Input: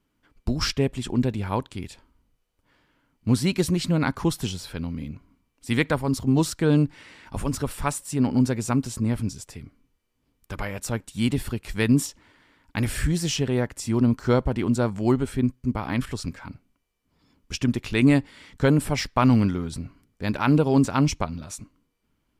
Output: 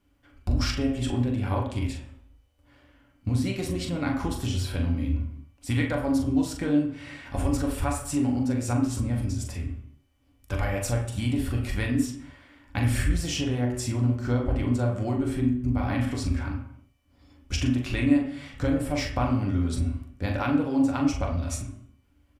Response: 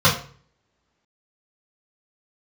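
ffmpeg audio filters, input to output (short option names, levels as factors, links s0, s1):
-filter_complex "[0:a]acompressor=threshold=0.0398:ratio=6,asplit=2[s0][s1];[s1]adelay=41,volume=0.447[s2];[s0][s2]amix=inputs=2:normalize=0,asplit=2[s3][s4];[1:a]atrim=start_sample=2205,afade=t=out:st=0.24:d=0.01,atrim=end_sample=11025,asetrate=23373,aresample=44100[s5];[s4][s5]afir=irnorm=-1:irlink=0,volume=0.0562[s6];[s3][s6]amix=inputs=2:normalize=0"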